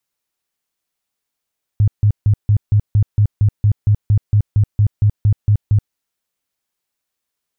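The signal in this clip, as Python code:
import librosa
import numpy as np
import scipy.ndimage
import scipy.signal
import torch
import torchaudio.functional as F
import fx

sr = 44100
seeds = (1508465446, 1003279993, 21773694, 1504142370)

y = fx.tone_burst(sr, hz=104.0, cycles=8, every_s=0.23, bursts=18, level_db=-8.5)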